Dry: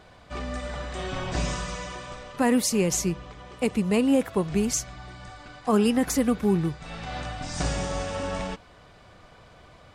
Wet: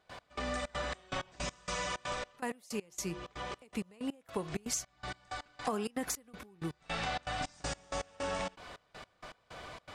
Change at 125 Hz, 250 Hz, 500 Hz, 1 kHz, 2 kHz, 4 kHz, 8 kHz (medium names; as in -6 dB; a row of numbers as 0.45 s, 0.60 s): -14.0 dB, -17.0 dB, -12.5 dB, -6.0 dB, -5.5 dB, -6.5 dB, -10.0 dB